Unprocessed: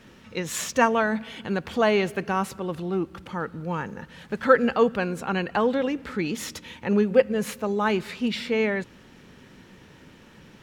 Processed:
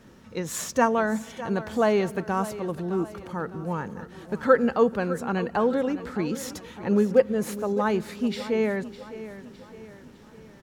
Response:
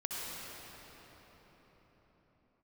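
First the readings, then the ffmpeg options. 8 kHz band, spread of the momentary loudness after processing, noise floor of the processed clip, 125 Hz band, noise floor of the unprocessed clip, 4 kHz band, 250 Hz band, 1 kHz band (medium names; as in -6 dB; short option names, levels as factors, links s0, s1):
-1.0 dB, 17 LU, -49 dBFS, 0.0 dB, -51 dBFS, -6.0 dB, 0.0 dB, -1.5 dB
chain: -af "equalizer=f=2700:w=1:g=-8.5,aecho=1:1:608|1216|1824|2432:0.188|0.0885|0.0416|0.0196"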